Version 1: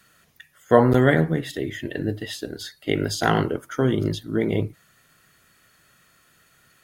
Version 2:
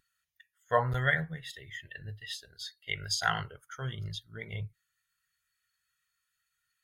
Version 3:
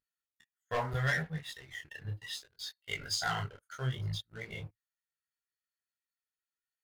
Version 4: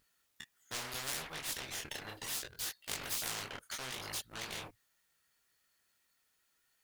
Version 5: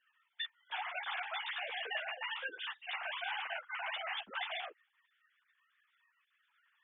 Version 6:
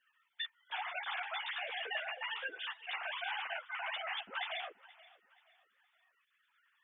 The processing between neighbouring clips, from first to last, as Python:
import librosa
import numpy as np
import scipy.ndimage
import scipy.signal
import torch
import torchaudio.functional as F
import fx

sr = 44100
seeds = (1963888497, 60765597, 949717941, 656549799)

y1 = fx.tone_stack(x, sr, knobs='10-0-10')
y1 = fx.spectral_expand(y1, sr, expansion=1.5)
y2 = fx.leveller(y1, sr, passes=3)
y2 = fx.detune_double(y2, sr, cents=25)
y2 = y2 * librosa.db_to_amplitude(-8.0)
y3 = fx.spectral_comp(y2, sr, ratio=10.0)
y4 = fx.sine_speech(y3, sr)
y4 = fx.ensemble(y4, sr)
y4 = y4 * librosa.db_to_amplitude(4.5)
y5 = fx.echo_feedback(y4, sr, ms=477, feedback_pct=35, wet_db=-20.5)